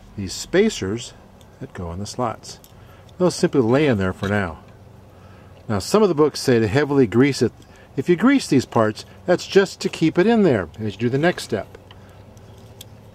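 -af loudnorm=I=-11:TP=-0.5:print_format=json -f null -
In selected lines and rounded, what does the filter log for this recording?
"input_i" : "-19.8",
"input_tp" : "-2.1",
"input_lra" : "4.2",
"input_thresh" : "-31.4",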